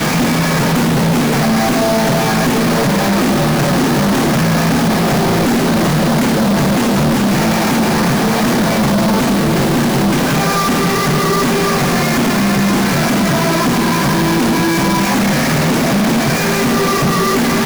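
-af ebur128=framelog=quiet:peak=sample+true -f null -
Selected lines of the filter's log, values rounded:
Integrated loudness:
  I:         -13.3 LUFS
  Threshold: -23.3 LUFS
Loudness range:
  LRA:         0.2 LU
  Threshold: -33.3 LUFS
  LRA low:   -13.4 LUFS
  LRA high:  -13.2 LUFS
Sample peak:
  Peak:      -10.9 dBFS
True peak:
  Peak:       -8.4 dBFS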